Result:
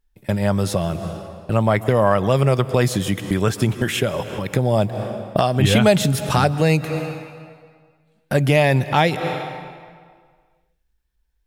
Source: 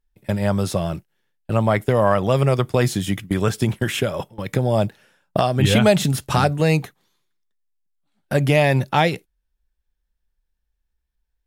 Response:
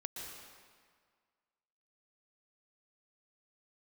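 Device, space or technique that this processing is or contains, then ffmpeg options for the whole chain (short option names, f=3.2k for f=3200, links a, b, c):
ducked reverb: -filter_complex "[0:a]asplit=3[a][b][c];[1:a]atrim=start_sample=2205[d];[b][d]afir=irnorm=-1:irlink=0[e];[c]apad=whole_len=505707[f];[e][f]sidechaincompress=threshold=-32dB:ratio=8:attack=16:release=146,volume=0.5dB[g];[a][g]amix=inputs=2:normalize=0"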